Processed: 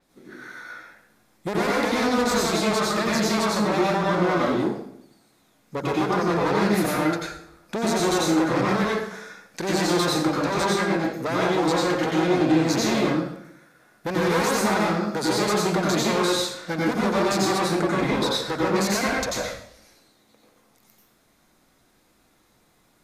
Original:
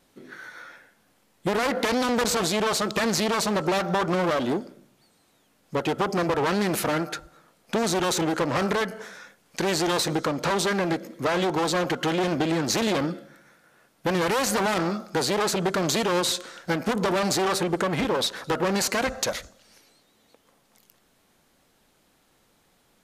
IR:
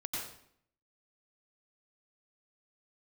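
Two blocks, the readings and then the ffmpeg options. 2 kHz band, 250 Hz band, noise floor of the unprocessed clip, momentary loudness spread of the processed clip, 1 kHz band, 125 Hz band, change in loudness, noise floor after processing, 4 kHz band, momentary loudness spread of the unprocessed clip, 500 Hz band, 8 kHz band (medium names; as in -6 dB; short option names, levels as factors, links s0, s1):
+2.0 dB, +4.0 dB, -65 dBFS, 13 LU, +2.5 dB, +3.0 dB, +2.0 dB, -62 dBFS, +0.5 dB, 8 LU, +2.0 dB, -0.5 dB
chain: -filter_complex "[0:a]equalizer=f=3000:w=6.8:g=-6.5[s0];[1:a]atrim=start_sample=2205[s1];[s0][s1]afir=irnorm=-1:irlink=0,adynamicequalizer=threshold=0.0112:dfrequency=6300:dqfactor=0.7:tfrequency=6300:tqfactor=0.7:attack=5:release=100:ratio=0.375:range=2:mode=cutabove:tftype=highshelf"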